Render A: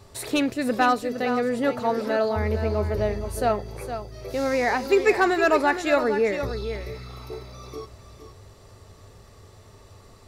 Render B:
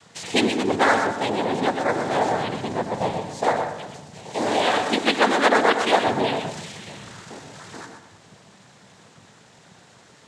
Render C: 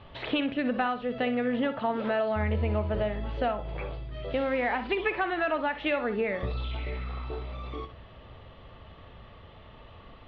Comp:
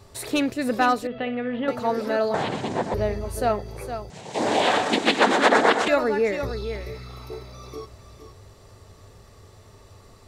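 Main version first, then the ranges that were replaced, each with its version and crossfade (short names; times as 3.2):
A
1.07–1.68 from C
2.34–2.94 from B
4.1–5.88 from B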